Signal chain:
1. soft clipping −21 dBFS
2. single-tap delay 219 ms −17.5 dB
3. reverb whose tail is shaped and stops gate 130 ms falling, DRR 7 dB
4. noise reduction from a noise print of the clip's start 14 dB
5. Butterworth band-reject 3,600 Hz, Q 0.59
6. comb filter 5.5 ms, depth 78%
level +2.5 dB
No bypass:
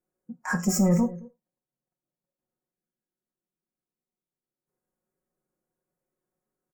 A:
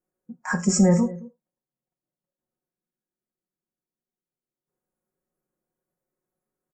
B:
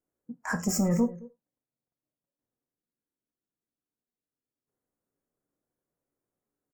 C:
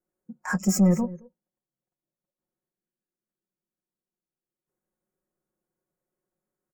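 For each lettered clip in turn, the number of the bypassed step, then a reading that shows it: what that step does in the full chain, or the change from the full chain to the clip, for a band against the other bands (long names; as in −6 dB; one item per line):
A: 1, distortion level −12 dB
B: 6, 125 Hz band −2.0 dB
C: 3, change in momentary loudness spread −5 LU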